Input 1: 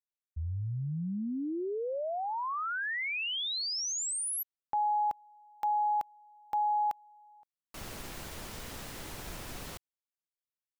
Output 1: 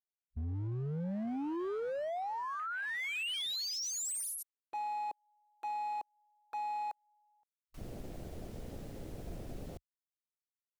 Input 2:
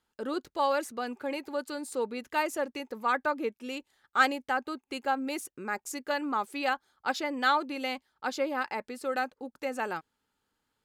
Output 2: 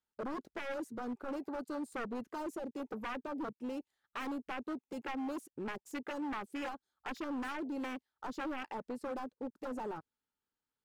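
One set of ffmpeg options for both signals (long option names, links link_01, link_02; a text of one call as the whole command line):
ffmpeg -i in.wav -filter_complex "[0:a]acrossover=split=460|3300[link_01][link_02][link_03];[link_02]acompressor=threshold=-39dB:ratio=8:attack=29:release=505:knee=1:detection=peak[link_04];[link_01][link_04][link_03]amix=inputs=3:normalize=0,aeval=exprs='0.02*(abs(mod(val(0)/0.02+3,4)-2)-1)':channel_layout=same,afwtdn=0.00794,asoftclip=type=hard:threshold=-36.5dB,volume=1.5dB" out.wav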